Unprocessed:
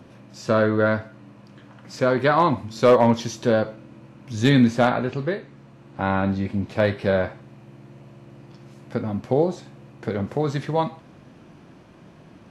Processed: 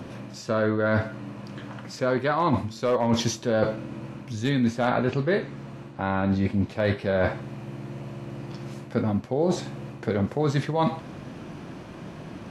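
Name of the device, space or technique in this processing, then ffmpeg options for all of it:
compression on the reversed sound: -af "areverse,acompressor=threshold=-28dB:ratio=16,areverse,volume=8.5dB"

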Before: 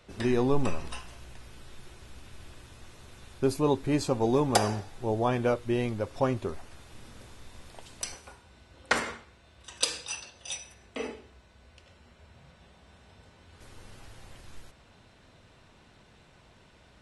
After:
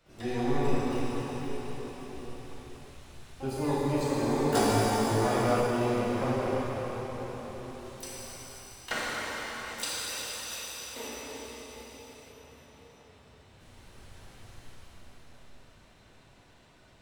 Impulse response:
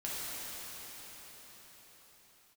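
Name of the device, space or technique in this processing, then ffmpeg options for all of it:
shimmer-style reverb: -filter_complex "[0:a]asplit=2[link_01][link_02];[link_02]asetrate=88200,aresample=44100,atempo=0.5,volume=-9dB[link_03];[link_01][link_03]amix=inputs=2:normalize=0[link_04];[1:a]atrim=start_sample=2205[link_05];[link_04][link_05]afir=irnorm=-1:irlink=0,asettb=1/sr,asplit=3[link_06][link_07][link_08];[link_06]atrim=end=4.524[link_09];[link_07]atrim=start=4.52:end=5.67,asetpts=PTS-STARTPTS,afade=type=in:duration=0.004:curve=qsin,afade=type=out:start_time=1.146:duration=0.004:curve=qsin,asplit=2[link_10][link_11];[link_11]adelay=18,volume=-2.5dB[link_12];[link_10][link_12]amix=inputs=2:normalize=0,atrim=end_sample=50715[link_13];[link_08]atrim=start=5.666[link_14];[link_09][link_13]acrossfade=duration=0.004:curve1=hsin:curve2=qsin[link_15];[link_15][link_14]acrossfade=duration=0.004:curve1=qsin:curve2=hsin,volume=-6dB"

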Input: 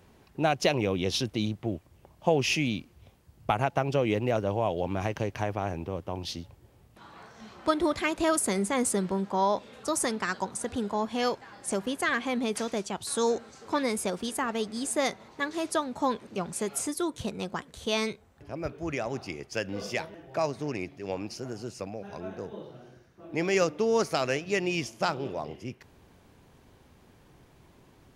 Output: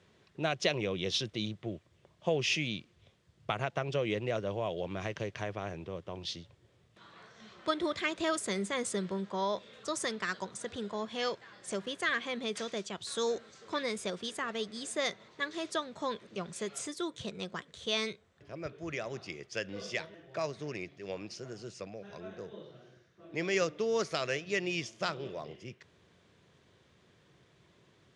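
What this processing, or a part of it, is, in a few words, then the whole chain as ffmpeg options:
car door speaker: -af "highpass=110,equalizer=frequency=260:width_type=q:width=4:gain=-9,equalizer=frequency=830:width_type=q:width=4:gain=-9,equalizer=frequency=1900:width_type=q:width=4:gain=3,equalizer=frequency=3500:width_type=q:width=4:gain=6,lowpass=frequency=8100:width=0.5412,lowpass=frequency=8100:width=1.3066,volume=-4.5dB"

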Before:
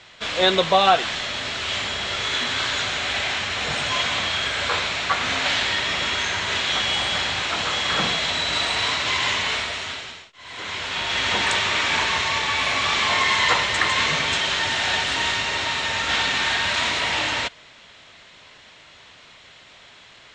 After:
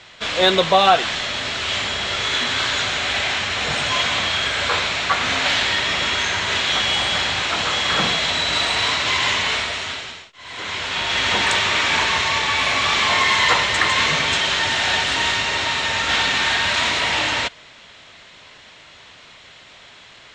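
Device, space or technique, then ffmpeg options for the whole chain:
parallel distortion: -filter_complex "[0:a]asplit=2[link_01][link_02];[link_02]asoftclip=type=hard:threshold=-17.5dB,volume=-14dB[link_03];[link_01][link_03]amix=inputs=2:normalize=0,volume=1.5dB"

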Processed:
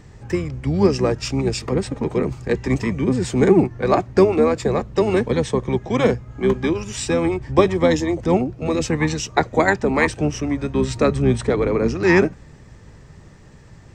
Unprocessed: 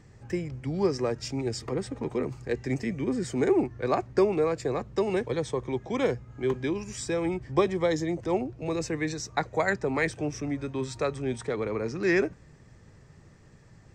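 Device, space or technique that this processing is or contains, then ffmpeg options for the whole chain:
octave pedal: -filter_complex "[0:a]asettb=1/sr,asplit=3[link_01][link_02][link_03];[link_01]atrim=end=10.754[link_04];[link_02]atrim=start=10.75:end=11.94,asetpts=PTS-STARTPTS,afade=type=in:duration=0.004:curve=qsin,afade=type=out:start_time=1.186:duration=0.004:curve=qsin,lowshelf=frequency=360:gain=6[link_05];[link_03]atrim=start=11.936[link_06];[link_04][link_05]acrossfade=duration=0.004:curve1=hsin:curve2=qsin[link_07];[link_07][link_06]acrossfade=duration=0.004:curve1=qsin:curve2=hsin,asplit=2[link_08][link_09];[link_09]asetrate=22050,aresample=44100,atempo=2,volume=-6dB[link_10];[link_08][link_10]amix=inputs=2:normalize=0,volume=8.5dB"

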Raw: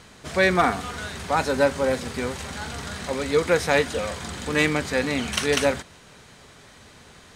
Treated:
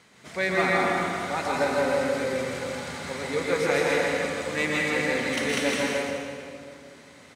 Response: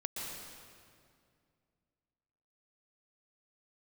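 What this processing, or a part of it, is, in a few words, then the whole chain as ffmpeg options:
stadium PA: -filter_complex "[0:a]highpass=140,equalizer=frequency=2100:width_type=o:width=0.21:gain=7.5,aecho=1:1:160.3|242:0.631|0.282[link_01];[1:a]atrim=start_sample=2205[link_02];[link_01][link_02]afir=irnorm=-1:irlink=0,volume=-6dB"

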